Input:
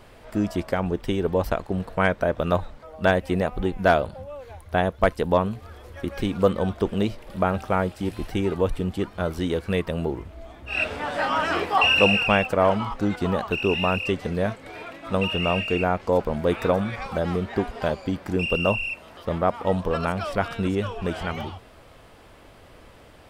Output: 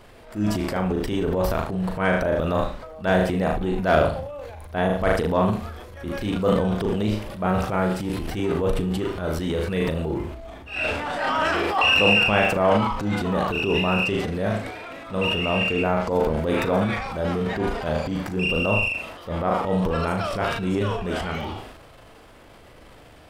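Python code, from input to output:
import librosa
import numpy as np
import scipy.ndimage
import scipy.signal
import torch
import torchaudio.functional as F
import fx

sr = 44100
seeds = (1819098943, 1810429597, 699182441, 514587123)

y = fx.room_flutter(x, sr, wall_m=6.5, rt60_s=0.37)
y = fx.transient(y, sr, attack_db=-8, sustain_db=8)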